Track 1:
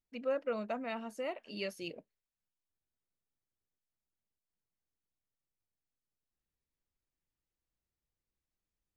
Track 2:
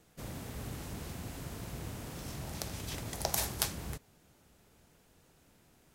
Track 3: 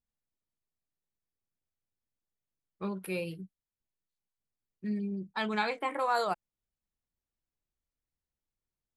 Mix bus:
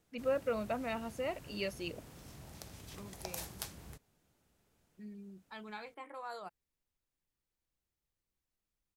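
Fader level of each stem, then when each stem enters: +1.0, -10.5, -15.5 dB; 0.00, 0.00, 0.15 s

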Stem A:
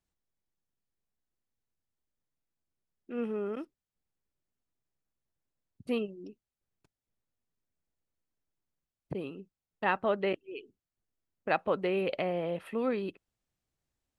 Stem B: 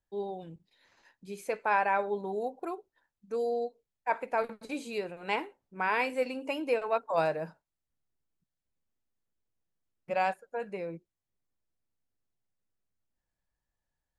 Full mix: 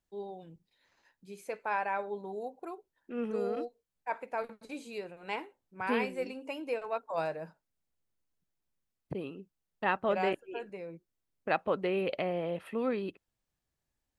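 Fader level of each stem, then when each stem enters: -1.0, -5.5 dB; 0.00, 0.00 s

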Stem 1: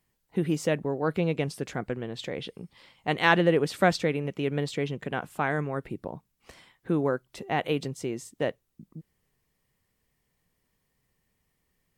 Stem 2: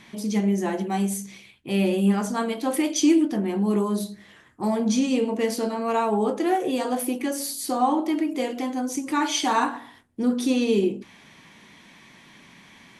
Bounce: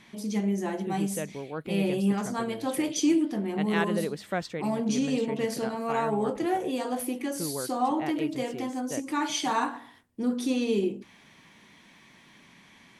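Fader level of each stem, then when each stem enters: -8.5, -5.0 dB; 0.50, 0.00 s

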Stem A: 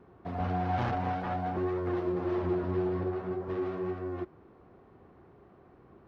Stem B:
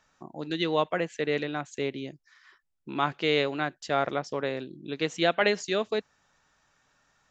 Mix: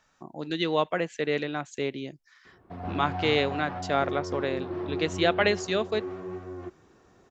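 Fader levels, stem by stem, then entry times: -3.0, +0.5 dB; 2.45, 0.00 s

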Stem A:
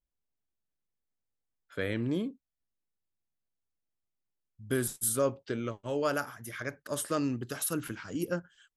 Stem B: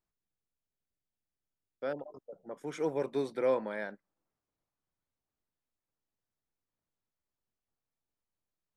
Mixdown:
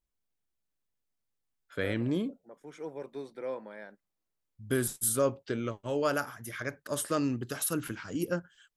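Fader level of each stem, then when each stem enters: +1.0, -8.0 dB; 0.00, 0.00 s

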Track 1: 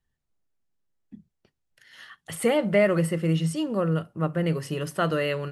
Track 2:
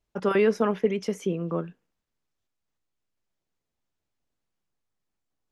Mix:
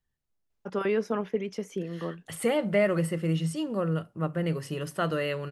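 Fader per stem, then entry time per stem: -3.5, -5.5 dB; 0.00, 0.50 s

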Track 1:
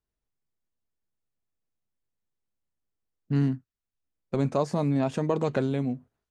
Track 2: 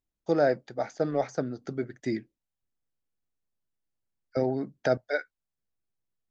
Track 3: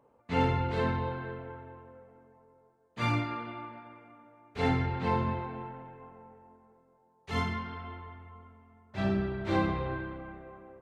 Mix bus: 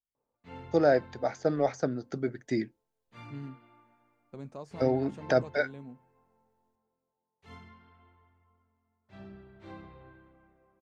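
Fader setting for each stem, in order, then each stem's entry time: -17.5, +0.5, -19.0 dB; 0.00, 0.45, 0.15 s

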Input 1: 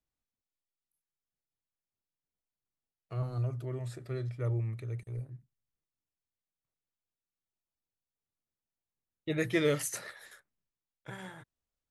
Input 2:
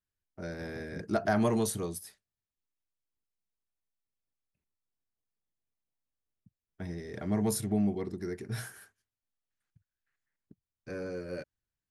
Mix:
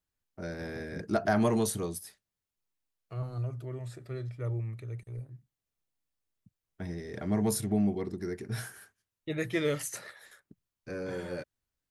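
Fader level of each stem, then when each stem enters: -1.5, +1.0 dB; 0.00, 0.00 s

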